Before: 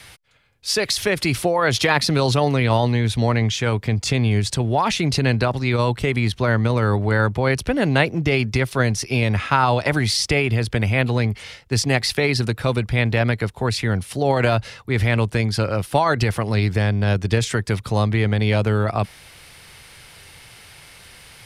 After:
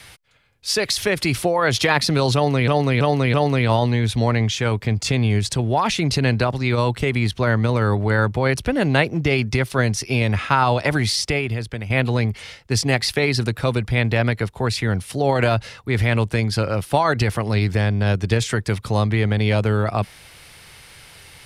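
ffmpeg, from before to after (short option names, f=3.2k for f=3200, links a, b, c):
-filter_complex "[0:a]asplit=5[a][b][c][d][e];[a]atrim=end=2.682[f];[b]atrim=start=2.348:end=2.682[g];[c]atrim=start=2.348:end=2.682[h];[d]atrim=start=2.348:end=10.91,asetpts=PTS-STARTPTS,afade=t=out:st=7.702:d=0.86:silence=0.281838[i];[e]atrim=start=10.91,asetpts=PTS-STARTPTS,afade=t=in:d=0.004:c=hsin:silence=0.281838[j];[f][g]acrossfade=d=0.004:c1=hsin:c2=hsin[k];[k][h]acrossfade=d=0.004:c1=hsin:c2=hsin[l];[i][j]concat=n=2:v=0:a=1[m];[l][m]acrossfade=d=0.004:c1=hsin:c2=hsin"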